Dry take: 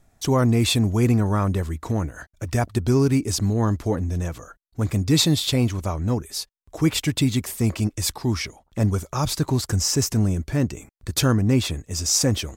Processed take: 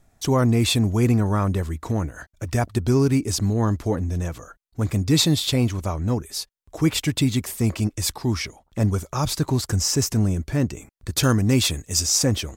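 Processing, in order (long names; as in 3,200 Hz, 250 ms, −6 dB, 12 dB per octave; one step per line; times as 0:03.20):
0:11.23–0:12.06: high-shelf EQ 2,700 Hz +9.5 dB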